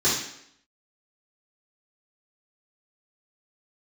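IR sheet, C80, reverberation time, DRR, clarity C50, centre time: 7.0 dB, 0.70 s, -11.5 dB, 3.0 dB, 47 ms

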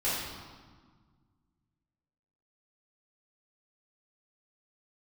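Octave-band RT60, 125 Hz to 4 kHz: 2.6 s, 2.2 s, 1.5 s, 1.6 s, 1.3 s, 1.2 s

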